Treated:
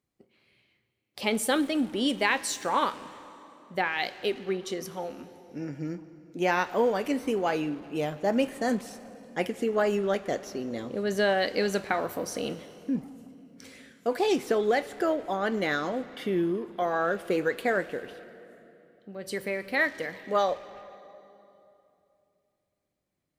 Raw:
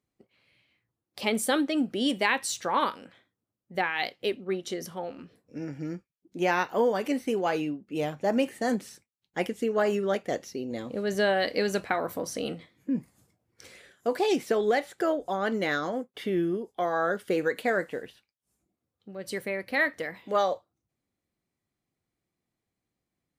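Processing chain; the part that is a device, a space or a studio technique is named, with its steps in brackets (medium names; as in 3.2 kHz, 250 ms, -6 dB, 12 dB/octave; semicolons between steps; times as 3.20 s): saturated reverb return (on a send at -10 dB: reverberation RT60 2.7 s, pre-delay 5 ms + saturation -31 dBFS, distortion -7 dB)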